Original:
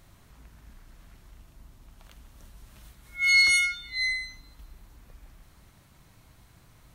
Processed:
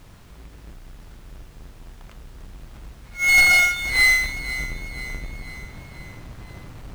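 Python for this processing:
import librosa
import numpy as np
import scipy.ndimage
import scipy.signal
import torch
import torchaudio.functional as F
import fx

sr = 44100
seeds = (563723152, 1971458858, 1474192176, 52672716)

p1 = fx.halfwave_hold(x, sr)
p2 = fx.rider(p1, sr, range_db=4, speed_s=0.5)
p3 = fx.dmg_noise_colour(p2, sr, seeds[0], colour='white', level_db=-58.0)
p4 = fx.lowpass(p3, sr, hz=2700.0, slope=6)
p5 = p4 + fx.echo_feedback(p4, sr, ms=493, feedback_pct=52, wet_db=-14.0, dry=0)
y = p5 * librosa.db_to_amplitude(7.5)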